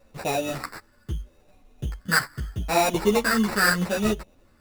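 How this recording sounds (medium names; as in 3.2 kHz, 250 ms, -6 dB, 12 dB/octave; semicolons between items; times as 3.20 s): a quantiser's noise floor 12-bit, dither none; phasing stages 4, 0.78 Hz, lowest notch 650–1300 Hz; aliases and images of a low sample rate 3.2 kHz, jitter 0%; a shimmering, thickened sound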